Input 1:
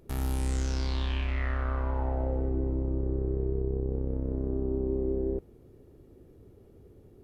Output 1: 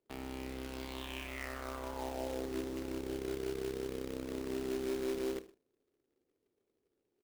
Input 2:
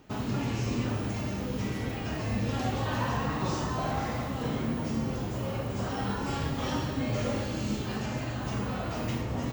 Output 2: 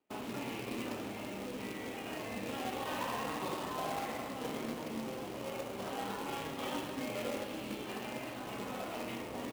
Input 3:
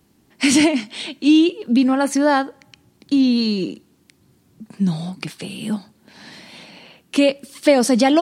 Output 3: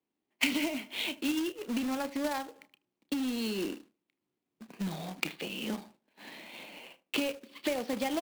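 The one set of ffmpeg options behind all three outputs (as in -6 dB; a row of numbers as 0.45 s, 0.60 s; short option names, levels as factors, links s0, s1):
-filter_complex "[0:a]lowpass=f=4300:w=0.5412,lowpass=f=4300:w=1.3066,agate=range=0.112:threshold=0.00631:ratio=16:detection=peak,acrossover=split=240 2100:gain=0.1 1 0.224[s0][s1][s2];[s0][s1][s2]amix=inputs=3:normalize=0,acompressor=threshold=0.0447:ratio=5,asplit=2[s3][s4];[s4]adelay=77,lowpass=f=1100:p=1,volume=0.168,asplit=2[s5][s6];[s6]adelay=77,lowpass=f=1100:p=1,volume=0.24[s7];[s3][s5][s7]amix=inputs=3:normalize=0,adynamicsmooth=sensitivity=2.5:basefreq=2700,aexciter=amount=7.4:drive=2.1:freq=2300,asplit=2[s8][s9];[s9]adelay=31,volume=0.211[s10];[s8][s10]amix=inputs=2:normalize=0,acrusher=bits=2:mode=log:mix=0:aa=0.000001,volume=0.596"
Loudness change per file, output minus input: -8.5 LU, -8.0 LU, -15.5 LU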